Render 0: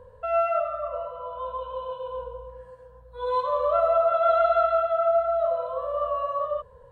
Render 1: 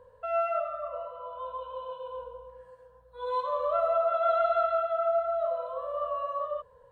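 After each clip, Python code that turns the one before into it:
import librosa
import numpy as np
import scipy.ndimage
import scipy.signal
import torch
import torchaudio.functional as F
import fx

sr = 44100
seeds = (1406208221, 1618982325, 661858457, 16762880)

y = fx.low_shelf(x, sr, hz=240.0, db=-9.0)
y = F.gain(torch.from_numpy(y), -4.0).numpy()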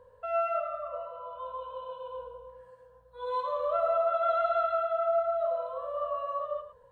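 y = x + 10.0 ** (-12.0 / 20.0) * np.pad(x, (int(109 * sr / 1000.0), 0))[:len(x)]
y = F.gain(torch.from_numpy(y), -1.5).numpy()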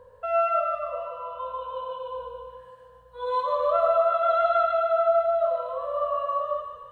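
y = fx.echo_thinned(x, sr, ms=149, feedback_pct=69, hz=1000.0, wet_db=-7.0)
y = F.gain(torch.from_numpy(y), 5.5).numpy()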